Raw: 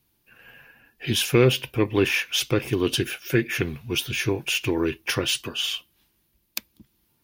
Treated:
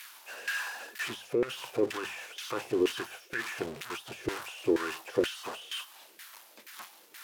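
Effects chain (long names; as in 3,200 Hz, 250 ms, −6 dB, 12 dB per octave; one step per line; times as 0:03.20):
spike at every zero crossing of −10 dBFS
mains-hum notches 50/100/150/200 Hz
compressor whose output falls as the input rises −20 dBFS, ratio −1
auto-filter band-pass saw down 2.1 Hz 370–1,800 Hz
dynamic equaliser 2,200 Hz, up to −4 dB, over −48 dBFS, Q 2.8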